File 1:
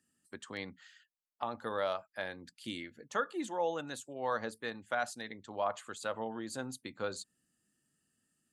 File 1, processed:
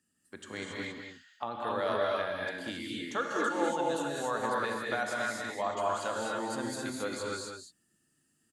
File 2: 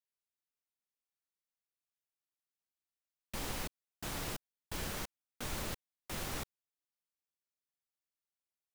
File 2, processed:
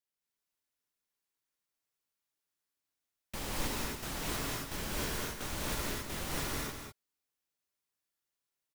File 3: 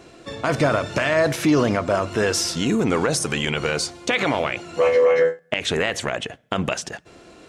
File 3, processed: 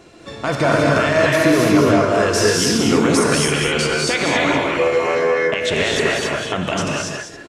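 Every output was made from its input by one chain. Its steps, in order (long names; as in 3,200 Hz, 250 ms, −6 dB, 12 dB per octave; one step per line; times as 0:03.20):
single-tap delay 197 ms −7 dB
reverb whose tail is shaped and stops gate 300 ms rising, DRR −3 dB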